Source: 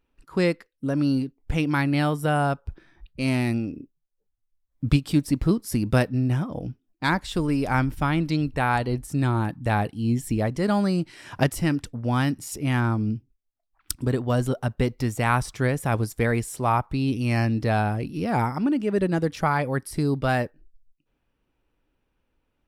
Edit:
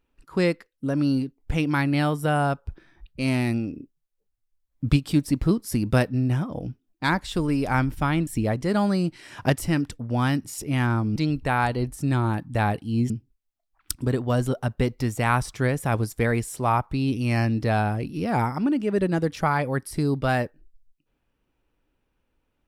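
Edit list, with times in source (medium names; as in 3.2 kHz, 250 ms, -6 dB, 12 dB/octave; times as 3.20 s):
8.27–10.21 s: move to 13.10 s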